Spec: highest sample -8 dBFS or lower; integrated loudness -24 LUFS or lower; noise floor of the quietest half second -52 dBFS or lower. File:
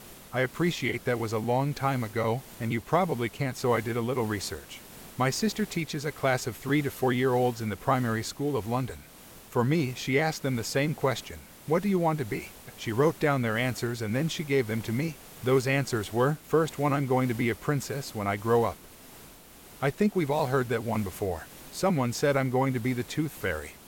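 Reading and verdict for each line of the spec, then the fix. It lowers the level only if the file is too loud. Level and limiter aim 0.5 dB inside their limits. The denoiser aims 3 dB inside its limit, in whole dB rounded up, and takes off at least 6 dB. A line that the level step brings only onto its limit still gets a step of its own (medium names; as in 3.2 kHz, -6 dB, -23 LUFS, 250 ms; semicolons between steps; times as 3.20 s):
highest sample -10.5 dBFS: pass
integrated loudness -28.5 LUFS: pass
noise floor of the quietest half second -50 dBFS: fail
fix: noise reduction 6 dB, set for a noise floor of -50 dBFS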